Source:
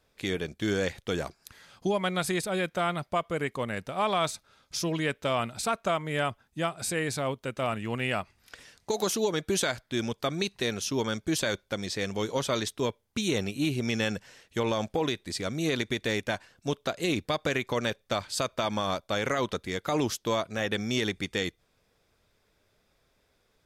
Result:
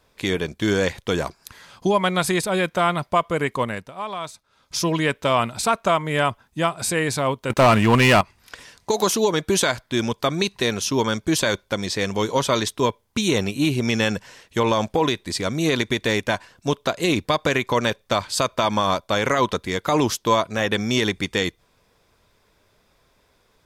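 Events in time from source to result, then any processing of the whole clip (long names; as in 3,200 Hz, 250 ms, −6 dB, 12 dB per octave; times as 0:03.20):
0:03.62–0:04.79: duck −12.5 dB, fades 0.29 s
0:07.50–0:08.21: leveller curve on the samples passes 3
whole clip: parametric band 1,000 Hz +7.5 dB 0.23 octaves; level +7.5 dB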